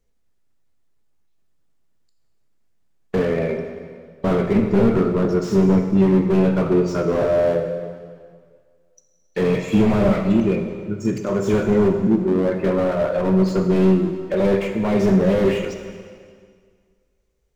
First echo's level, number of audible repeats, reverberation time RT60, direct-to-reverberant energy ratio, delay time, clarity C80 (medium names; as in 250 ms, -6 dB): no echo, no echo, 1.9 s, 4.5 dB, no echo, 7.5 dB